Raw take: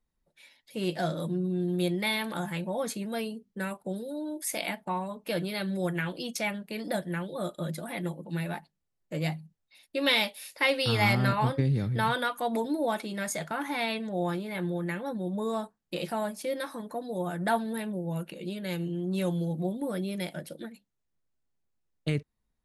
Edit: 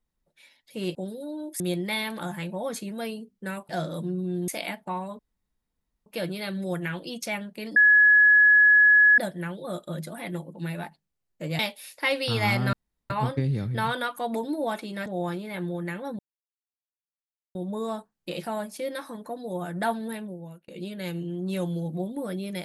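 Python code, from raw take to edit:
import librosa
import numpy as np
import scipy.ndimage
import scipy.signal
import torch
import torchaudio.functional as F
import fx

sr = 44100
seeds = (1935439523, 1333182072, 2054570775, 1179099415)

y = fx.edit(x, sr, fx.swap(start_s=0.95, length_s=0.79, other_s=3.83, other_length_s=0.65),
    fx.insert_room_tone(at_s=5.19, length_s=0.87),
    fx.insert_tone(at_s=6.89, length_s=1.42, hz=1690.0, db=-13.0),
    fx.cut(start_s=9.3, length_s=0.87),
    fx.insert_room_tone(at_s=11.31, length_s=0.37),
    fx.cut(start_s=13.27, length_s=0.8),
    fx.insert_silence(at_s=15.2, length_s=1.36),
    fx.fade_out_span(start_s=17.75, length_s=0.58), tone=tone)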